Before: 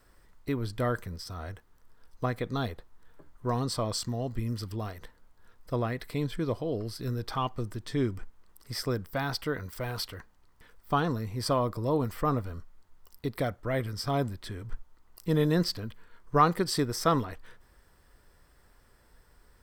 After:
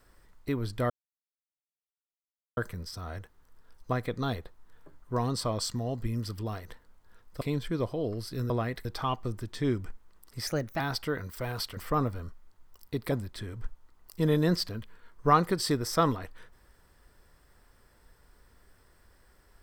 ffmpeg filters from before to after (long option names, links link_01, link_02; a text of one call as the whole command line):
ffmpeg -i in.wav -filter_complex "[0:a]asplit=9[link_01][link_02][link_03][link_04][link_05][link_06][link_07][link_08][link_09];[link_01]atrim=end=0.9,asetpts=PTS-STARTPTS,afade=type=out:start_time=0.896:duration=0.004:curve=hsin,apad=pad_dur=1.67[link_10];[link_02]atrim=start=0.9:end=5.742,asetpts=PTS-STARTPTS,afade=type=in:duration=0.004:curve=hsin[link_11];[link_03]atrim=start=6.088:end=7.182[link_12];[link_04]atrim=start=5.738:end=6.092[link_13];[link_05]atrim=start=7.178:end=8.804[link_14];[link_06]atrim=start=8.8:end=9.19,asetpts=PTS-STARTPTS,asetrate=52479,aresample=44100[link_15];[link_07]atrim=start=9.186:end=10.162[link_16];[link_08]atrim=start=12.078:end=13.432[link_17];[link_09]atrim=start=14.198[link_18];[link_10][link_11]concat=n=2:v=0:a=1[link_19];[link_19][link_12]acrossfade=duration=0.004:curve1=hsin:curve2=hsin[link_20];[link_20][link_13]acrossfade=duration=0.004:curve1=hsin:curve2=hsin[link_21];[link_21][link_14]acrossfade=duration=0.004:curve1=hsin:curve2=hsin[link_22];[link_22][link_15]acrossfade=duration=0.004:curve1=hsin:curve2=hsin[link_23];[link_23][link_16]acrossfade=duration=0.004:curve1=hsin:curve2=hsin[link_24];[link_24][link_17]acrossfade=duration=0.004:curve1=hsin:curve2=hsin[link_25];[link_25][link_18]acrossfade=duration=0.004:curve1=hsin:curve2=hsin" out.wav